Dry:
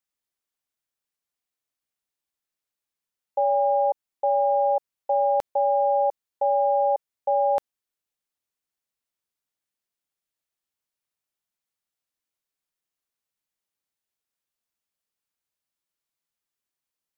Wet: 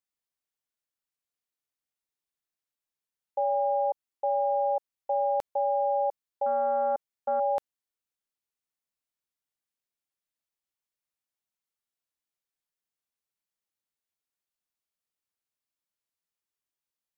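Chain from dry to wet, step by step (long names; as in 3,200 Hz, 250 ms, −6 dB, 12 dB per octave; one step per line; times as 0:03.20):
0:06.46–0:07.40: highs frequency-modulated by the lows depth 0.1 ms
level −5 dB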